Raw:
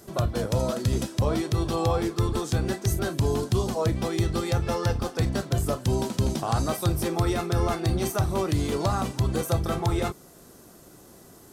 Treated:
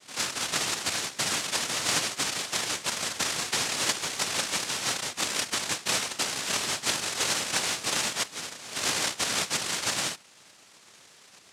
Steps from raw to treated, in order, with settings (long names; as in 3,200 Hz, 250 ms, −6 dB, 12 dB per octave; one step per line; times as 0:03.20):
multi-voice chorus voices 6, 0.48 Hz, delay 29 ms, depth 3.5 ms
0:08.22–0:08.76: band-pass filter 770–5,200 Hz
cochlear-implant simulation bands 1